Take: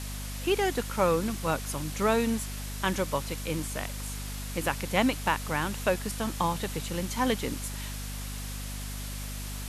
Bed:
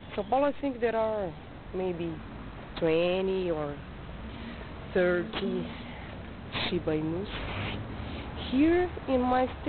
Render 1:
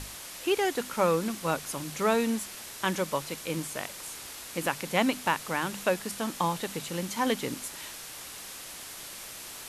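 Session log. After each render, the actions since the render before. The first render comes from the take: hum notches 50/100/150/200/250 Hz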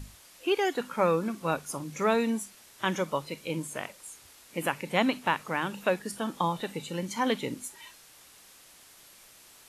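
noise print and reduce 12 dB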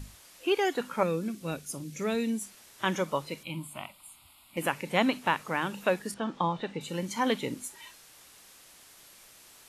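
1.03–2.42 s: peaking EQ 1 kHz -14 dB 1.5 oct; 3.43–4.57 s: static phaser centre 1.7 kHz, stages 6; 6.14–6.81 s: distance through air 140 m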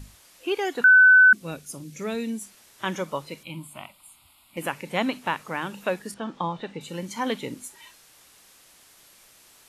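0.84–1.33 s: bleep 1.51 kHz -10 dBFS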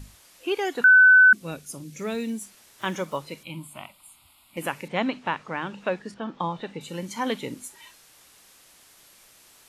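1.91–3.18 s: block-companded coder 7-bit; 4.88–6.40 s: distance through air 110 m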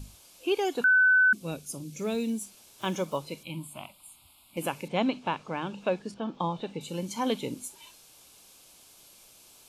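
peaking EQ 1.5 kHz -6.5 dB 0.98 oct; band-stop 1.9 kHz, Q 5.2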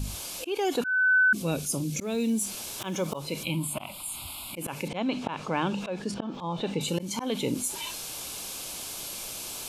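slow attack 322 ms; level flattener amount 50%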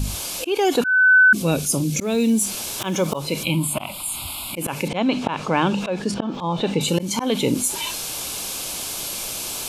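trim +8.5 dB

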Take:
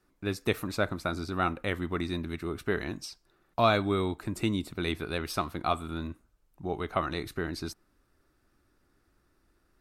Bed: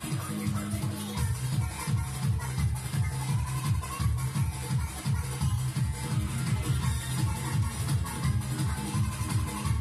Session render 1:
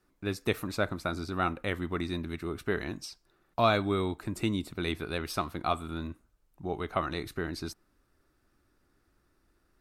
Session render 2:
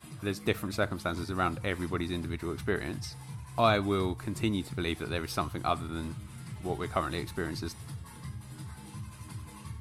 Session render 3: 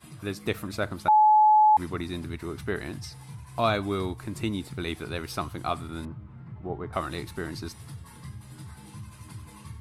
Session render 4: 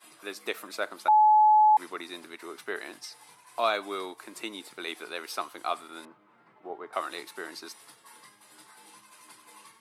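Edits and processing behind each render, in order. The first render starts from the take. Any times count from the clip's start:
trim -1 dB
add bed -13.5 dB
1.08–1.77 s: bleep 855 Hz -14.5 dBFS; 6.05–6.93 s: low-pass 1.2 kHz
Bessel high-pass 520 Hz, order 4

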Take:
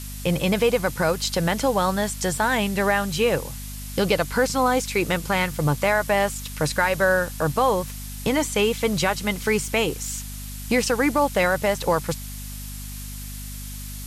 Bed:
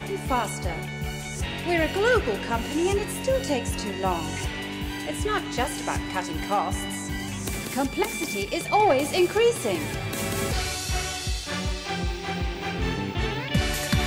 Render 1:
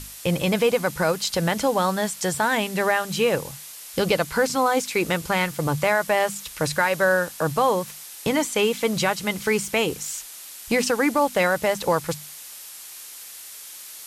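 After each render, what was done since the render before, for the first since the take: hum notches 50/100/150/200/250 Hz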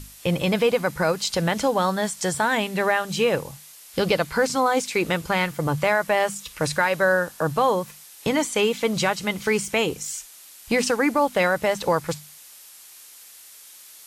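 noise print and reduce 6 dB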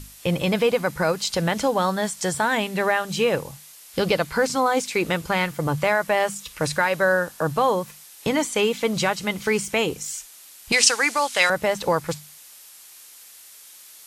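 10.72–11.50 s: frequency weighting ITU-R 468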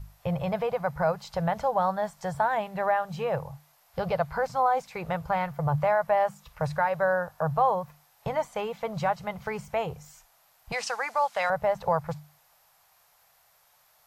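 FFT filter 150 Hz 0 dB, 280 Hz -24 dB, 700 Hz +2 dB, 3.1 kHz -18 dB, 5 kHz -18 dB, 9.5 kHz -25 dB, 14 kHz -13 dB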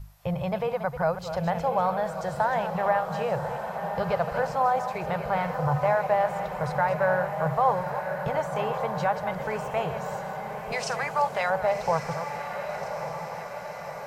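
chunks repeated in reverse 170 ms, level -10 dB; echo that smears into a reverb 1149 ms, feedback 64%, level -7.5 dB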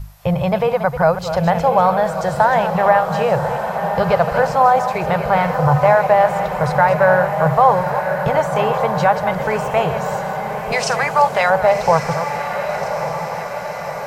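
trim +11 dB; peak limiter -1 dBFS, peak gain reduction 1.5 dB

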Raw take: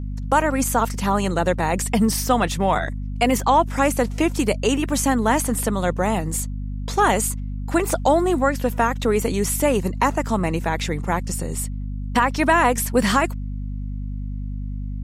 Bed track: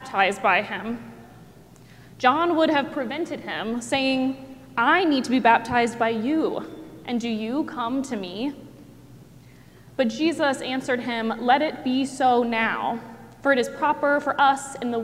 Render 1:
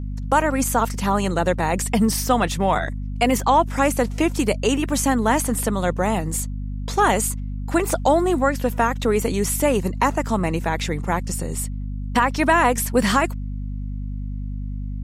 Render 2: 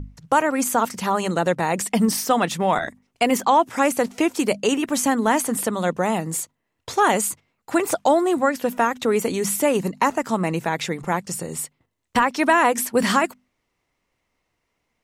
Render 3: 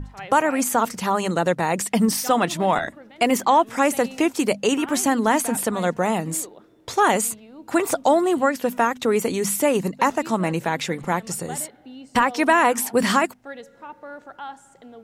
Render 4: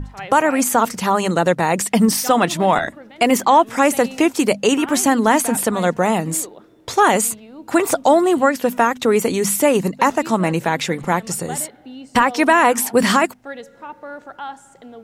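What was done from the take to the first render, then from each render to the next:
no audible change
hum notches 50/100/150/200/250 Hz
add bed track -17.5 dB
trim +4.5 dB; peak limiter -3 dBFS, peak gain reduction 2 dB

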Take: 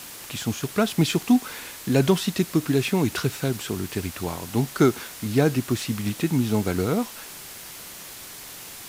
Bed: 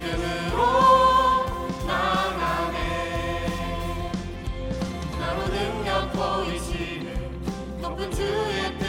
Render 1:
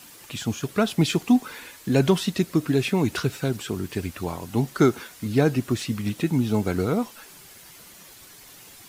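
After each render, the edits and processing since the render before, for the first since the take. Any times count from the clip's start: noise reduction 9 dB, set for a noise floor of -40 dBFS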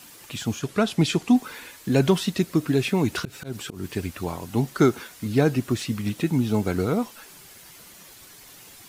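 0.59–1.36 s: low-pass 11 kHz; 3.19–3.85 s: slow attack 155 ms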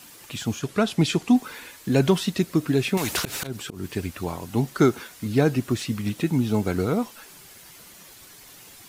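2.97–3.47 s: spectrum-flattening compressor 2:1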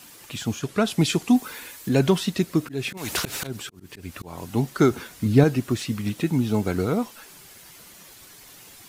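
0.85–1.89 s: treble shelf 7.9 kHz +8 dB; 2.60–4.38 s: slow attack 202 ms; 4.91–5.44 s: bass shelf 330 Hz +8 dB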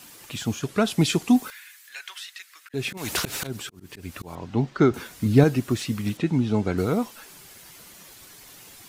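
1.50–2.74 s: ladder high-pass 1.4 kHz, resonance 40%; 4.35–4.94 s: distance through air 160 m; 6.17–6.78 s: distance through air 85 m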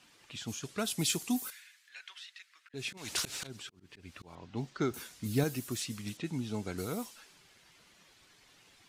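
level-controlled noise filter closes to 2.7 kHz, open at -18.5 dBFS; pre-emphasis filter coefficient 0.8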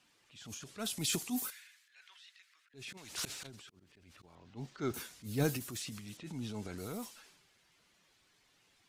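transient shaper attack -7 dB, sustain +7 dB; upward expansion 1.5:1, over -44 dBFS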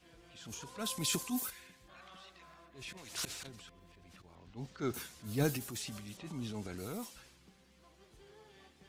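add bed -34 dB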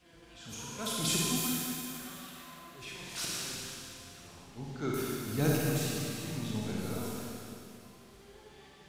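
Schroeder reverb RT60 2.7 s, DRR -4.5 dB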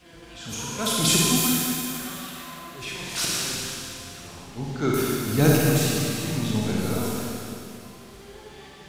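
trim +10.5 dB

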